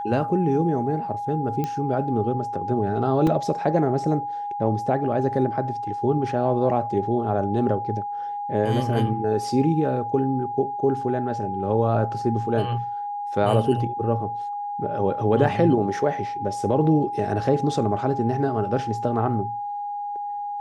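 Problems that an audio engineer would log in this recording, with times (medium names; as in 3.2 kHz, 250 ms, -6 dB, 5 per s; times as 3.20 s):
whine 820 Hz -27 dBFS
1.64 s: pop -14 dBFS
3.27 s: dropout 3.2 ms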